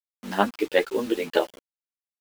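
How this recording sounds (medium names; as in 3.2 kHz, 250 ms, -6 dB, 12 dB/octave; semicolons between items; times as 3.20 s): tremolo triangle 7.5 Hz, depth 50%; a quantiser's noise floor 8-bit, dither none; a shimmering, thickened sound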